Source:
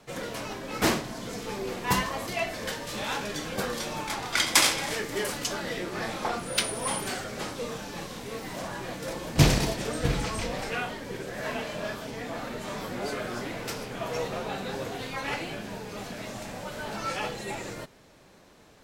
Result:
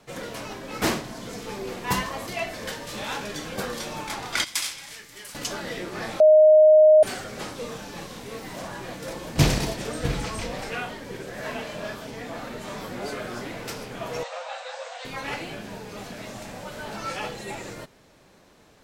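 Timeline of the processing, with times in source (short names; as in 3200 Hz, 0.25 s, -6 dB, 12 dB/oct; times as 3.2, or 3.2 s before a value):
4.44–5.35 passive tone stack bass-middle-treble 5-5-5
6.2–7.03 bleep 619 Hz -10 dBFS
14.23–15.05 brick-wall FIR band-pass 480–8700 Hz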